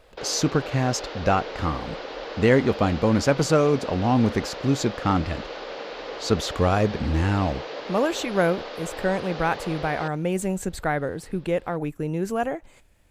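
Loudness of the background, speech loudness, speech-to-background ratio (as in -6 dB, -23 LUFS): -35.0 LUFS, -24.5 LUFS, 10.5 dB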